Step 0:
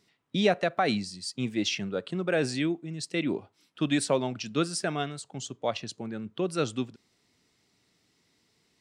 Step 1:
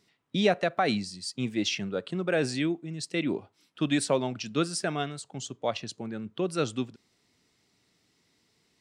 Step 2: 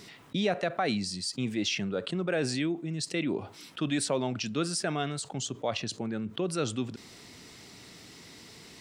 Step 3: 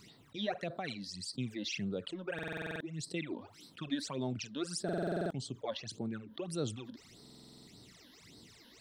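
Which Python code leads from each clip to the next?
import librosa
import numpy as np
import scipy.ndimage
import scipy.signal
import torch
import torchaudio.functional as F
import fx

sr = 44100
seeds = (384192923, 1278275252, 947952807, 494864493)

y1 = x
y2 = fx.env_flatten(y1, sr, amount_pct=50)
y2 = y2 * librosa.db_to_amplitude(-5.5)
y3 = fx.phaser_stages(y2, sr, stages=12, low_hz=120.0, high_hz=2400.0, hz=1.7, feedback_pct=50)
y3 = fx.buffer_glitch(y3, sr, at_s=(2.34, 4.84, 7.21), block=2048, repeats=9)
y3 = y3 * librosa.db_to_amplitude(-6.0)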